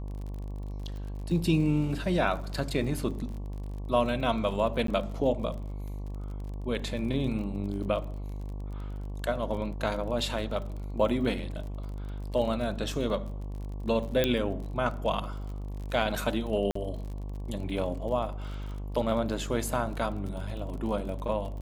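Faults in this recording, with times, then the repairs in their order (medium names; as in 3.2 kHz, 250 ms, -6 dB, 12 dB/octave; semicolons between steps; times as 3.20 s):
buzz 50 Hz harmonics 23 -36 dBFS
crackle 39 per s -38 dBFS
4.87–4.88 s: dropout 13 ms
14.24 s: pop -11 dBFS
16.71–16.75 s: dropout 44 ms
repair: de-click; de-hum 50 Hz, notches 23; interpolate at 4.87 s, 13 ms; interpolate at 16.71 s, 44 ms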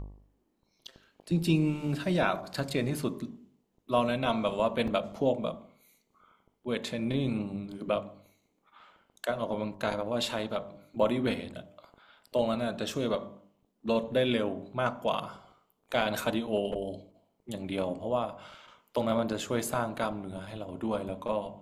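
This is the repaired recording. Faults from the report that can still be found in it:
14.24 s: pop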